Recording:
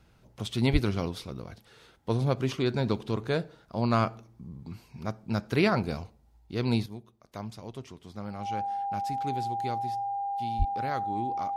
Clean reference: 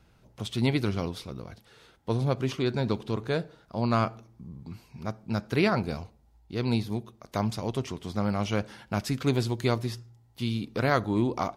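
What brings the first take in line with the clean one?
notch 800 Hz, Q 30; 0.72–0.84 HPF 140 Hz 24 dB/oct; 10.58–10.7 HPF 140 Hz 24 dB/oct; gain 0 dB, from 6.86 s +10.5 dB

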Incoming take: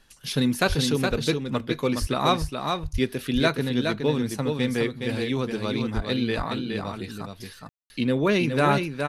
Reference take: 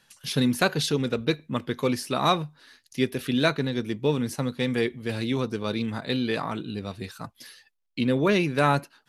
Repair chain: de-plosive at 0.68/2/2.4/2.92/5.95; room tone fill 7.69–7.9; expander -34 dBFS, range -21 dB; inverse comb 0.417 s -5 dB

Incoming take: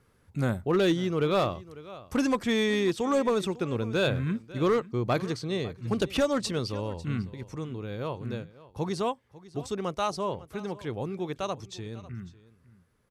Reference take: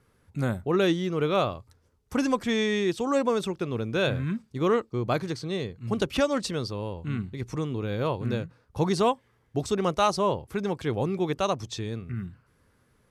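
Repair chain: clip repair -18 dBFS; inverse comb 0.548 s -19 dB; gain 0 dB, from 7.34 s +6 dB

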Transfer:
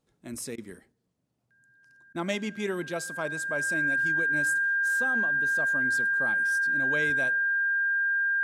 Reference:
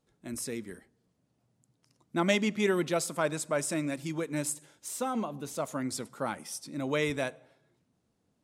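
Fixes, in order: notch 1600 Hz, Q 30; interpolate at 0.56/2.13, 18 ms; gain correction +4 dB, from 0.92

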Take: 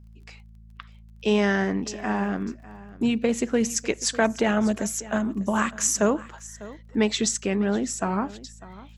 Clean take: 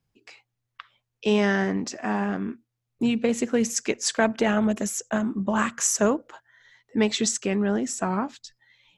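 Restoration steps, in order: de-click; de-hum 54.8 Hz, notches 4; inverse comb 0.599 s -18.5 dB

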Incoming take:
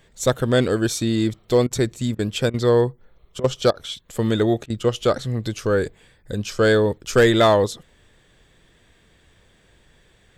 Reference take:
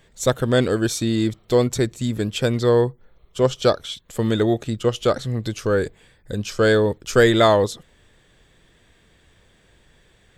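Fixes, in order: clip repair -7.5 dBFS; interpolate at 1.67/2.15/2.5/3.4/3.71/4.66, 39 ms

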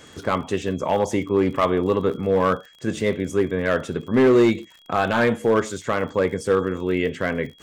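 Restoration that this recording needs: clip repair -11 dBFS; de-click; notch 3300 Hz, Q 30; interpolate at 0.68/4.78, 3 ms

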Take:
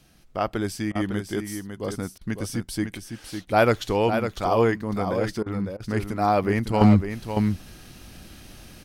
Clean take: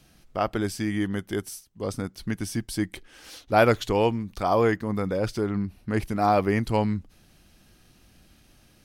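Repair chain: clip repair -7 dBFS; interpolate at 0.92/2.18/5.43/5.77, 31 ms; inverse comb 0.554 s -7.5 dB; gain correction -11.5 dB, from 6.81

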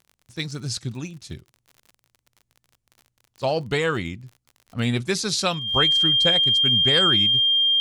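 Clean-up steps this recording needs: de-click; notch 3200 Hz, Q 30

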